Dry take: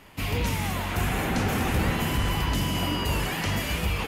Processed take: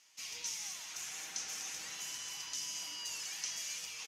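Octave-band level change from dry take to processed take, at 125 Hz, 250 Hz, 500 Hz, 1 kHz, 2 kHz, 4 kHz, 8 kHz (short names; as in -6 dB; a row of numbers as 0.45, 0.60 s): under -40 dB, -37.0 dB, -30.5 dB, -24.5 dB, -17.0 dB, -9.5 dB, 0.0 dB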